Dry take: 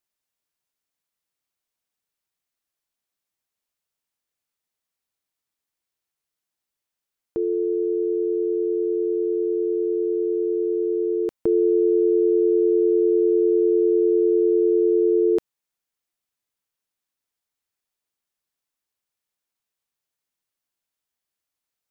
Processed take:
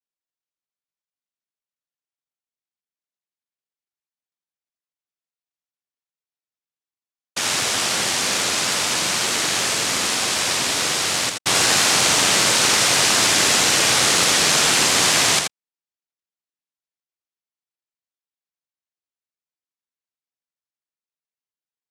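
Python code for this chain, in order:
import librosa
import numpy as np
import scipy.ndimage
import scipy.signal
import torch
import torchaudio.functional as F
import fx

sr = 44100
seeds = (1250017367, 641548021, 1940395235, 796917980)

y = scipy.signal.sosfilt(scipy.signal.butter(8, 600.0, 'lowpass', fs=sr, output='sos'), x)
y = fx.noise_vocoder(y, sr, seeds[0], bands=1)
y = y + 10.0 ** (-5.0 / 20.0) * np.pad(y, (int(82 * sr / 1000.0), 0))[:len(y)]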